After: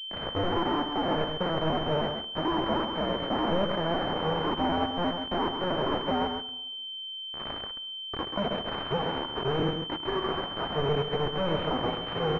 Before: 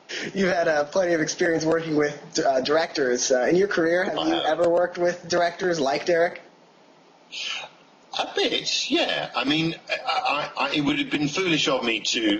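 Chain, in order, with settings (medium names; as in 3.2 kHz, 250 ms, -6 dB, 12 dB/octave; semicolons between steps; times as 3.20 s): cycle switcher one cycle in 2, inverted; tilt EQ -2.5 dB/octave; harmonic-percussive split percussive -4 dB; bass shelf 360 Hz -9 dB; in parallel at -0.5 dB: compression, threshold -37 dBFS, peak gain reduction 18 dB; on the sum: peak limiter -17 dBFS, peak gain reduction 6 dB; upward compressor, threshold -38 dBFS; feedback comb 52 Hz, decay 0.44 s, harmonics all, mix 40%; bit crusher 5-bit; delay 133 ms -6.5 dB; on a send at -17 dB: reverberation RT60 1.0 s, pre-delay 48 ms; on the sum: class-D stage that switches slowly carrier 3.1 kHz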